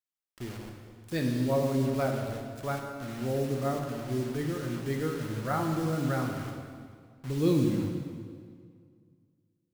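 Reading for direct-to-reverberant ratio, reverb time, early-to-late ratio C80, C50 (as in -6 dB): 1.5 dB, 2.0 s, 5.0 dB, 3.5 dB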